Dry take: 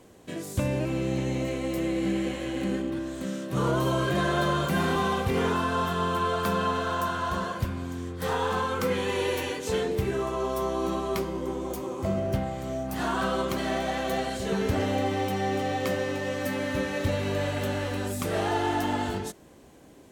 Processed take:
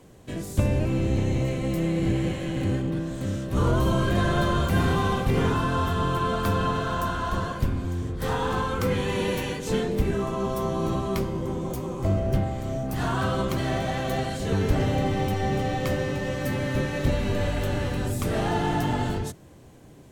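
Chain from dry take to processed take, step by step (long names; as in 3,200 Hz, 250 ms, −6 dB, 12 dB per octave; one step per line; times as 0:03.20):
sub-octave generator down 1 octave, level +4 dB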